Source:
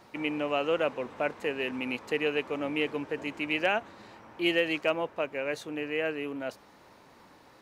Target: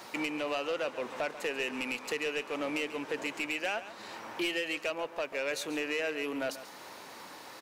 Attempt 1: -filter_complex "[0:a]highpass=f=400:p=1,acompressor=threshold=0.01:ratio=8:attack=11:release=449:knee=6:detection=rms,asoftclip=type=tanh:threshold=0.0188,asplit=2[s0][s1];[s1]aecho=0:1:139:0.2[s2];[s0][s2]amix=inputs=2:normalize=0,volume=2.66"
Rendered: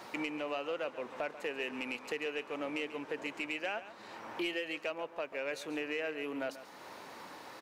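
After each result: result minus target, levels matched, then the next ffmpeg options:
8 kHz band -6.0 dB; compression: peak gain reduction +4.5 dB
-filter_complex "[0:a]highpass=f=400:p=1,highshelf=f=3400:g=7.5,acompressor=threshold=0.01:ratio=8:attack=11:release=449:knee=6:detection=rms,asoftclip=type=tanh:threshold=0.0188,asplit=2[s0][s1];[s1]aecho=0:1:139:0.2[s2];[s0][s2]amix=inputs=2:normalize=0,volume=2.66"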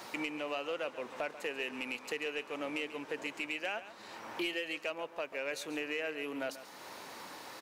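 compression: peak gain reduction +5.5 dB
-filter_complex "[0:a]highpass=f=400:p=1,highshelf=f=3400:g=7.5,acompressor=threshold=0.0211:ratio=8:attack=11:release=449:knee=6:detection=rms,asoftclip=type=tanh:threshold=0.0188,asplit=2[s0][s1];[s1]aecho=0:1:139:0.2[s2];[s0][s2]amix=inputs=2:normalize=0,volume=2.66"

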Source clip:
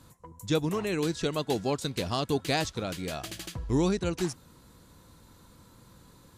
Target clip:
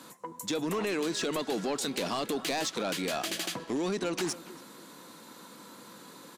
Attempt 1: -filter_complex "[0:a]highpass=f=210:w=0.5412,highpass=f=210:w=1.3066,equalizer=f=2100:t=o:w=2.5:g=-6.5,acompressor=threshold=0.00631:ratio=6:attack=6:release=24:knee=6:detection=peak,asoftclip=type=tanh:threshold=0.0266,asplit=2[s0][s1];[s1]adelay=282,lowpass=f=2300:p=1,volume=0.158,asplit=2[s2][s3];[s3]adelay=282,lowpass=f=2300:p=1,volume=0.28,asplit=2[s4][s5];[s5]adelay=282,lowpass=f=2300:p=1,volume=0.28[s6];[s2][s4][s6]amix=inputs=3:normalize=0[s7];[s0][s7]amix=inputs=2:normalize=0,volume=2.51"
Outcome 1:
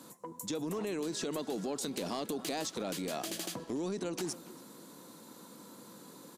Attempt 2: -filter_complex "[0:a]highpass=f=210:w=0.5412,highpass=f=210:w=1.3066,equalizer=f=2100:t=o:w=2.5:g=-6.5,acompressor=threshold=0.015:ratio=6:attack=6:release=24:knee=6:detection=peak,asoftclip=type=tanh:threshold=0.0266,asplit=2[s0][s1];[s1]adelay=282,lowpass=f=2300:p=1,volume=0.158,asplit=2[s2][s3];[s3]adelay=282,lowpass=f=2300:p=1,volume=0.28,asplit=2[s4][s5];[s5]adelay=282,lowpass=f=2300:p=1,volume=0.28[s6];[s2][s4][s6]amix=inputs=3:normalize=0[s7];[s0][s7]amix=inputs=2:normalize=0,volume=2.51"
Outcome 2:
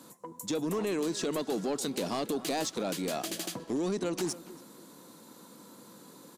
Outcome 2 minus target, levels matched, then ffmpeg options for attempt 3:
2 kHz band -5.0 dB
-filter_complex "[0:a]highpass=f=210:w=0.5412,highpass=f=210:w=1.3066,equalizer=f=2100:t=o:w=2.5:g=2.5,acompressor=threshold=0.015:ratio=6:attack=6:release=24:knee=6:detection=peak,asoftclip=type=tanh:threshold=0.0266,asplit=2[s0][s1];[s1]adelay=282,lowpass=f=2300:p=1,volume=0.158,asplit=2[s2][s3];[s3]adelay=282,lowpass=f=2300:p=1,volume=0.28,asplit=2[s4][s5];[s5]adelay=282,lowpass=f=2300:p=1,volume=0.28[s6];[s2][s4][s6]amix=inputs=3:normalize=0[s7];[s0][s7]amix=inputs=2:normalize=0,volume=2.51"

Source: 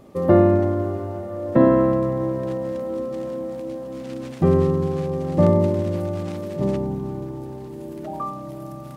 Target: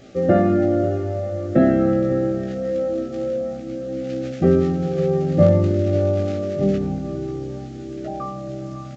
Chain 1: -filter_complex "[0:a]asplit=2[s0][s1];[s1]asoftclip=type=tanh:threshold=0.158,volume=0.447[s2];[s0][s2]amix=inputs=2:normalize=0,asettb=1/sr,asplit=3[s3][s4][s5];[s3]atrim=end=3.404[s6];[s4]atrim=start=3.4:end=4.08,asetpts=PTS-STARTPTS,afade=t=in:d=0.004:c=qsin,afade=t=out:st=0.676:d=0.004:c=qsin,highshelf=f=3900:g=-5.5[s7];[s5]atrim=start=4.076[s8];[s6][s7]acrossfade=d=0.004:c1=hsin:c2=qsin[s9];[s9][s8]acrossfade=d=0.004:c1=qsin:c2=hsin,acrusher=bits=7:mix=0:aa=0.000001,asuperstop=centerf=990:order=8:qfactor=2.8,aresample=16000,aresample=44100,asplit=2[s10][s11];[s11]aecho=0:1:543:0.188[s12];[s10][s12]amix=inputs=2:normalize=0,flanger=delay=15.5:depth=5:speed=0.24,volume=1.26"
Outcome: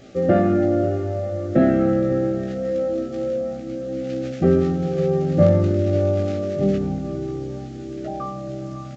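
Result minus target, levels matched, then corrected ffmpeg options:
saturation: distortion +9 dB
-filter_complex "[0:a]asplit=2[s0][s1];[s1]asoftclip=type=tanh:threshold=0.398,volume=0.447[s2];[s0][s2]amix=inputs=2:normalize=0,asettb=1/sr,asplit=3[s3][s4][s5];[s3]atrim=end=3.404[s6];[s4]atrim=start=3.4:end=4.08,asetpts=PTS-STARTPTS,afade=t=in:d=0.004:c=qsin,afade=t=out:st=0.676:d=0.004:c=qsin,highshelf=f=3900:g=-5.5[s7];[s5]atrim=start=4.076[s8];[s6][s7]acrossfade=d=0.004:c1=hsin:c2=qsin[s9];[s9][s8]acrossfade=d=0.004:c1=qsin:c2=hsin,acrusher=bits=7:mix=0:aa=0.000001,asuperstop=centerf=990:order=8:qfactor=2.8,aresample=16000,aresample=44100,asplit=2[s10][s11];[s11]aecho=0:1:543:0.188[s12];[s10][s12]amix=inputs=2:normalize=0,flanger=delay=15.5:depth=5:speed=0.24,volume=1.26"

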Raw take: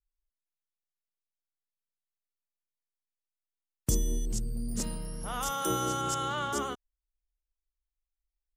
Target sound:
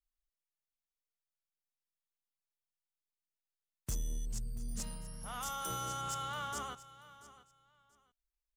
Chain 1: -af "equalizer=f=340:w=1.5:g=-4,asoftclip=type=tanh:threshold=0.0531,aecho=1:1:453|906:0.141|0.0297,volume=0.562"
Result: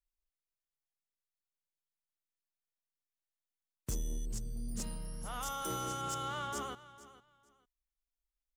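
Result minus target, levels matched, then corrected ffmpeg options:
echo 231 ms early; 250 Hz band +4.0 dB
-af "equalizer=f=340:w=1.5:g=-14,asoftclip=type=tanh:threshold=0.0531,aecho=1:1:684|1368:0.141|0.0297,volume=0.562"

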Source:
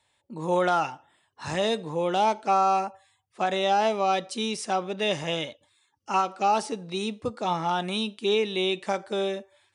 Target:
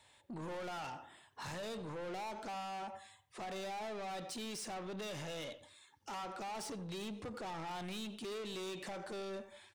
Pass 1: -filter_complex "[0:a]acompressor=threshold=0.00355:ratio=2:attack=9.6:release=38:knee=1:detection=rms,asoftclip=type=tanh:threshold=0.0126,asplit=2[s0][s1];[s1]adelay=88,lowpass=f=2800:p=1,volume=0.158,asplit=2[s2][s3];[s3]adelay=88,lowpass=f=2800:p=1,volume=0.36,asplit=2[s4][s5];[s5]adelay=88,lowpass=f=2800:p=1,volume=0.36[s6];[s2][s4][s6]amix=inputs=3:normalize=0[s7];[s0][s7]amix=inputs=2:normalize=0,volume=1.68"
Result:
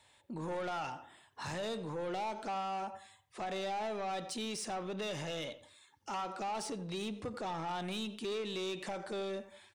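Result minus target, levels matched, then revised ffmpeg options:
saturation: distortion -5 dB
-filter_complex "[0:a]acompressor=threshold=0.00355:ratio=2:attack=9.6:release=38:knee=1:detection=rms,asoftclip=type=tanh:threshold=0.00531,asplit=2[s0][s1];[s1]adelay=88,lowpass=f=2800:p=1,volume=0.158,asplit=2[s2][s3];[s3]adelay=88,lowpass=f=2800:p=1,volume=0.36,asplit=2[s4][s5];[s5]adelay=88,lowpass=f=2800:p=1,volume=0.36[s6];[s2][s4][s6]amix=inputs=3:normalize=0[s7];[s0][s7]amix=inputs=2:normalize=0,volume=1.68"

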